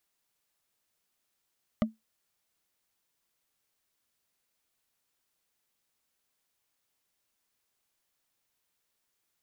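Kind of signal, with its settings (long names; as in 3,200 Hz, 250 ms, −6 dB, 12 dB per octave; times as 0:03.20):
struck wood, lowest mode 221 Hz, decay 0.17 s, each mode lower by 4 dB, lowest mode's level −19 dB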